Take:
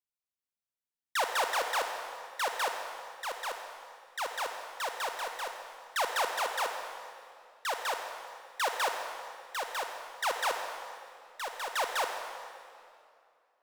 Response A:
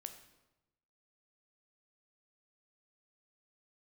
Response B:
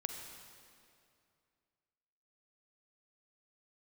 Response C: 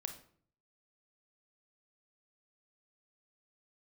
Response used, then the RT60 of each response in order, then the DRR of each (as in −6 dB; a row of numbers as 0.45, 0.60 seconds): B; 1.0, 2.5, 0.55 seconds; 7.0, 4.5, 6.0 decibels